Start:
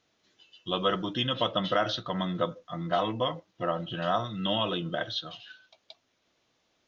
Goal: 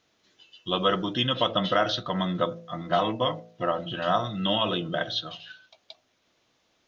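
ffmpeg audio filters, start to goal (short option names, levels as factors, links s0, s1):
-af "bandreject=f=56.12:t=h:w=4,bandreject=f=112.24:t=h:w=4,bandreject=f=168.36:t=h:w=4,bandreject=f=224.48:t=h:w=4,bandreject=f=280.6:t=h:w=4,bandreject=f=336.72:t=h:w=4,bandreject=f=392.84:t=h:w=4,bandreject=f=448.96:t=h:w=4,bandreject=f=505.08:t=h:w=4,bandreject=f=561.2:t=h:w=4,bandreject=f=617.32:t=h:w=4,bandreject=f=673.44:t=h:w=4,bandreject=f=729.56:t=h:w=4,bandreject=f=785.68:t=h:w=4,volume=1.5"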